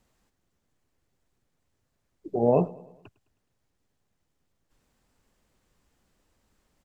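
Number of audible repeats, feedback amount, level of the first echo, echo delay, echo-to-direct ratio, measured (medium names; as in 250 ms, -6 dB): 3, 53%, -21.0 dB, 105 ms, -19.5 dB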